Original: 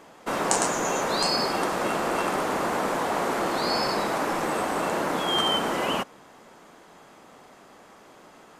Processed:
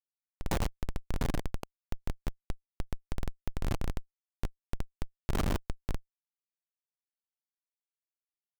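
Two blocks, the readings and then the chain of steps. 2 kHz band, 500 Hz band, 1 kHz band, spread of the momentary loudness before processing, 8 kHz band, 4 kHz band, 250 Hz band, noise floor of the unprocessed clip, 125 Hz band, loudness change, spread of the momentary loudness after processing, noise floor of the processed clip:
-17.5 dB, -17.5 dB, -20.5 dB, 3 LU, -19.0 dB, -21.5 dB, -10.5 dB, -52 dBFS, +2.5 dB, -14.0 dB, 11 LU, under -85 dBFS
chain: Schmitt trigger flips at -16 dBFS

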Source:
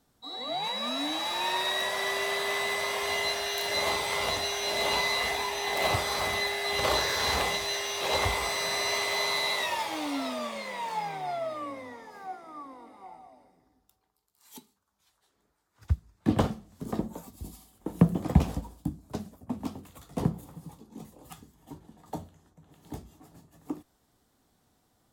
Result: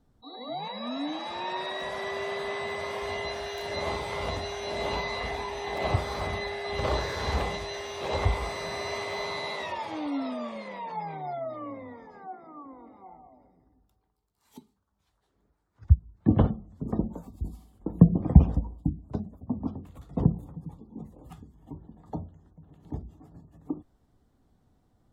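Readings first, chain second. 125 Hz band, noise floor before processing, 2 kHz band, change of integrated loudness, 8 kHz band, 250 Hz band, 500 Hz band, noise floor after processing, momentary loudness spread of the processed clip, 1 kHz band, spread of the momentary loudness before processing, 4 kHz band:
+6.0 dB, -73 dBFS, -6.0 dB, -1.0 dB, -12.5 dB, +3.5 dB, 0.0 dB, -73 dBFS, 19 LU, -2.5 dB, 19 LU, -9.0 dB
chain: spectral gate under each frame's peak -30 dB strong; tilt EQ -3 dB/octave; trim -3 dB

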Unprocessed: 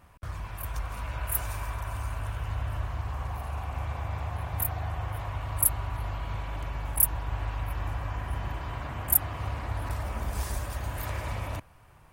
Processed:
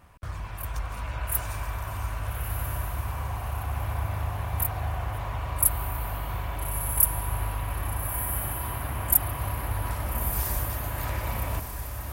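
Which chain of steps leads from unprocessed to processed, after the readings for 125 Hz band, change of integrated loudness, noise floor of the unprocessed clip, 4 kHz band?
+2.0 dB, +2.5 dB, -55 dBFS, +2.5 dB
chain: echo that smears into a reverb 1303 ms, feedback 43%, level -5.5 dB; trim +1.5 dB

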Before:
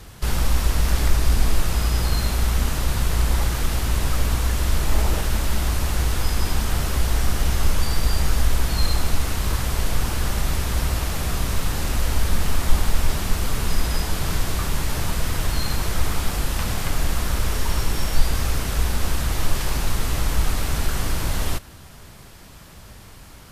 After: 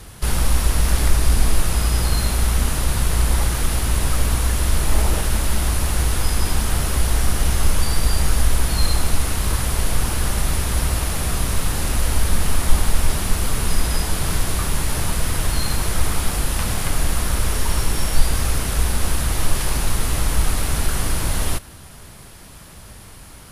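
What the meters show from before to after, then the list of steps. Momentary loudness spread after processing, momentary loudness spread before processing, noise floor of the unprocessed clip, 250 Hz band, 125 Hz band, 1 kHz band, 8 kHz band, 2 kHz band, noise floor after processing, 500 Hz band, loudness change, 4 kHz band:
3 LU, 3 LU, -43 dBFS, +2.0 dB, +2.0 dB, +2.0 dB, +6.0 dB, +2.0 dB, -41 dBFS, +2.0 dB, +2.5 dB, +2.0 dB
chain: peaking EQ 10 kHz +10 dB 0.24 oct; trim +2 dB

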